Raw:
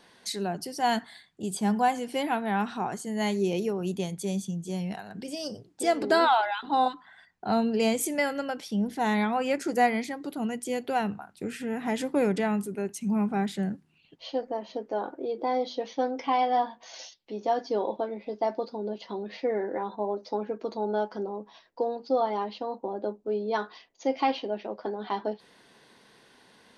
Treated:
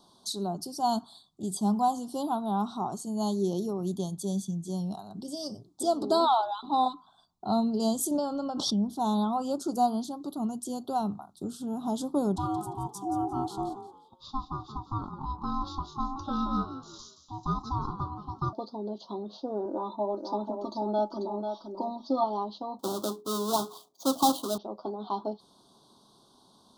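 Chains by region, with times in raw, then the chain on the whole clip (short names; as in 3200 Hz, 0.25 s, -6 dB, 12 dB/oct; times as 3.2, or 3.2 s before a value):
8.11–8.9 air absorption 100 m + backwards sustainer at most 28 dB/s
12.36–18.53 ring modulator 530 Hz + frequency-shifting echo 0.174 s, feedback 30%, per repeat +65 Hz, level -11 dB
19.65–22.24 comb 3.3 ms, depth 79% + echo 0.491 s -6.5 dB
22.79–24.58 half-waves squared off + HPF 150 Hz + notches 60/120/180/240/300/360/420/480 Hz
whole clip: elliptic band-stop 1200–3600 Hz, stop band 70 dB; bell 480 Hz -13 dB 0.22 oct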